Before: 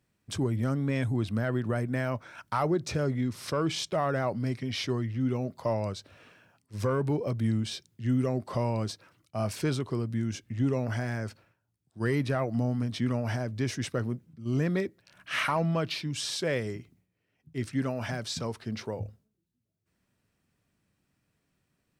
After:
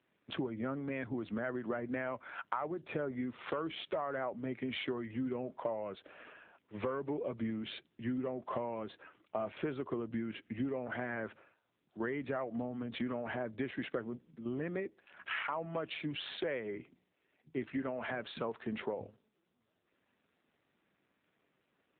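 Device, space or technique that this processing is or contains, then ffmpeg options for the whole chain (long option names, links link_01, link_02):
voicemail: -af "highpass=300,lowpass=2900,acompressor=threshold=-39dB:ratio=8,volume=6dB" -ar 8000 -c:a libopencore_amrnb -b:a 7400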